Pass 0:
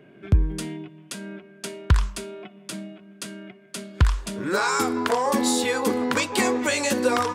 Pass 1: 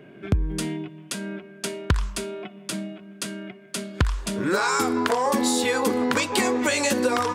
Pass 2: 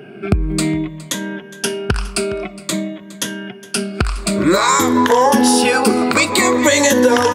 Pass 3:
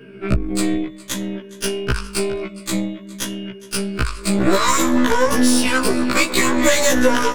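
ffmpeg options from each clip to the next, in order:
ffmpeg -i in.wav -af "acompressor=threshold=-23dB:ratio=4,volume=4dB" out.wav
ffmpeg -i in.wav -af "afftfilt=real='re*pow(10,11/40*sin(2*PI*(1.1*log(max(b,1)*sr/1024/100)/log(2)-(-0.53)*(pts-256)/sr)))':imag='im*pow(10,11/40*sin(2*PI*(1.1*log(max(b,1)*sr/1024/100)/log(2)-(-0.53)*(pts-256)/sr)))':win_size=1024:overlap=0.75,aecho=1:1:413:0.106,alimiter=level_in=9.5dB:limit=-1dB:release=50:level=0:latency=1,volume=-1dB" out.wav
ffmpeg -i in.wav -af "asuperstop=centerf=760:order=12:qfactor=3.2,aeval=exprs='1*(cos(1*acos(clip(val(0)/1,-1,1)))-cos(1*PI/2))+0.141*(cos(6*acos(clip(val(0)/1,-1,1)))-cos(6*PI/2))':channel_layout=same,afftfilt=real='re*1.73*eq(mod(b,3),0)':imag='im*1.73*eq(mod(b,3),0)':win_size=2048:overlap=0.75,volume=-1.5dB" out.wav

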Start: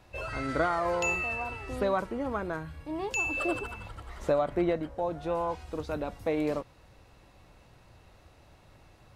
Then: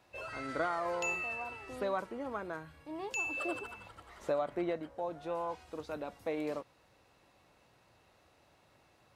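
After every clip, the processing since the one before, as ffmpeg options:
ffmpeg -i in.wav -af "highpass=frequency=270:poles=1,volume=-5.5dB" out.wav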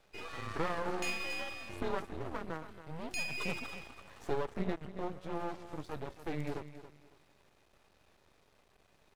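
ffmpeg -i in.wav -af "afreqshift=-160,aecho=1:1:278|556|834:0.237|0.0593|0.0148,aeval=exprs='max(val(0),0)':channel_layout=same,volume=2.5dB" out.wav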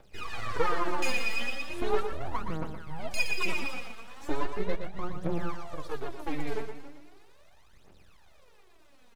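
ffmpeg -i in.wav -af "aphaser=in_gain=1:out_gain=1:delay=4.6:decay=0.77:speed=0.38:type=triangular,aecho=1:1:118:0.422,volume=1.5dB" out.wav

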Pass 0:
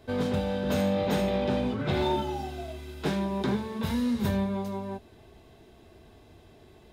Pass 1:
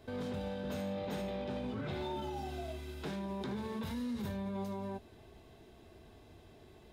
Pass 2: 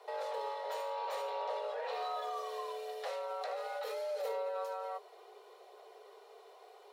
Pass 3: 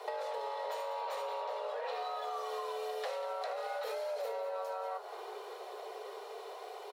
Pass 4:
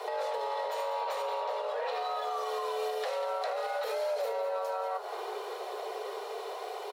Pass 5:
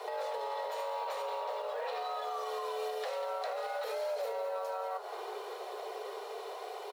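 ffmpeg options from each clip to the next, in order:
ffmpeg -i in.wav -af "alimiter=level_in=4.5dB:limit=-24dB:level=0:latency=1:release=47,volume=-4.5dB,volume=-3.5dB" out.wav
ffmpeg -i in.wav -af "aphaser=in_gain=1:out_gain=1:delay=3.2:decay=0.21:speed=0.69:type=triangular,afreqshift=360" out.wav
ffmpeg -i in.wav -filter_complex "[0:a]acompressor=threshold=-46dB:ratio=12,asplit=8[link_01][link_02][link_03][link_04][link_05][link_06][link_07][link_08];[link_02]adelay=191,afreqshift=81,volume=-13dB[link_09];[link_03]adelay=382,afreqshift=162,volume=-16.9dB[link_10];[link_04]adelay=573,afreqshift=243,volume=-20.8dB[link_11];[link_05]adelay=764,afreqshift=324,volume=-24.6dB[link_12];[link_06]adelay=955,afreqshift=405,volume=-28.5dB[link_13];[link_07]adelay=1146,afreqshift=486,volume=-32.4dB[link_14];[link_08]adelay=1337,afreqshift=567,volume=-36.3dB[link_15];[link_01][link_09][link_10][link_11][link_12][link_13][link_14][link_15]amix=inputs=8:normalize=0,volume=10.5dB" out.wav
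ffmpeg -i in.wav -af "alimiter=level_in=8dB:limit=-24dB:level=0:latency=1:release=73,volume=-8dB,volume=7dB" out.wav
ffmpeg -i in.wav -af "acrusher=bits=8:mode=log:mix=0:aa=0.000001,volume=-3.5dB" out.wav

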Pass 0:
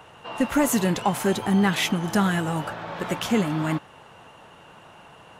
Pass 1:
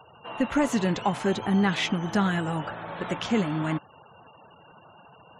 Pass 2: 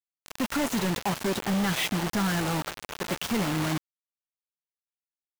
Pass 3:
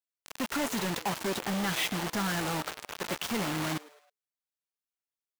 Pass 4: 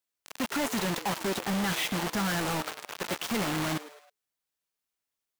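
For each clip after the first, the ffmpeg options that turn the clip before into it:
ffmpeg -i in.wav -filter_complex "[0:a]acrossover=split=6500[link_01][link_02];[link_02]acompressor=threshold=-48dB:ratio=4:attack=1:release=60[link_03];[link_01][link_03]amix=inputs=2:normalize=0,afftfilt=real='re*gte(hypot(re,im),0.00708)':imag='im*gte(hypot(re,im),0.00708)':win_size=1024:overlap=0.75,volume=-2.5dB" out.wav
ffmpeg -i in.wav -af "asoftclip=type=tanh:threshold=-20.5dB,acrusher=bits=4:mix=0:aa=0.000001" out.wav
ffmpeg -i in.wav -filter_complex "[0:a]lowshelf=frequency=260:gain=-6.5,asplit=4[link_01][link_02][link_03][link_04];[link_02]adelay=106,afreqshift=140,volume=-21dB[link_05];[link_03]adelay=212,afreqshift=280,volume=-27.6dB[link_06];[link_04]adelay=318,afreqshift=420,volume=-34.1dB[link_07];[link_01][link_05][link_06][link_07]amix=inputs=4:normalize=0,volume=-2dB" out.wav
ffmpeg -i in.wav -af "asoftclip=type=tanh:threshold=-32.5dB,volume=6.5dB" out.wav

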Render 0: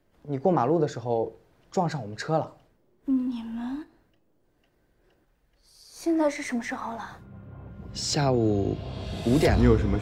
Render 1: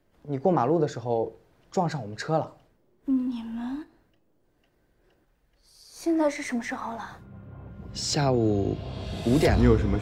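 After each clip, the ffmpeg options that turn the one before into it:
ffmpeg -i in.wav -af anull out.wav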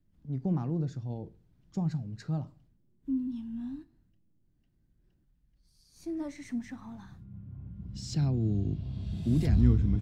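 ffmpeg -i in.wav -af "firequalizer=gain_entry='entry(180,0);entry(460,-21);entry(3400,-14)':delay=0.05:min_phase=1" out.wav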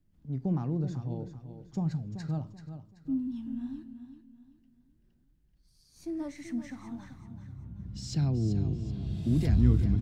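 ffmpeg -i in.wav -af "aecho=1:1:383|766|1149|1532:0.299|0.102|0.0345|0.0117" out.wav

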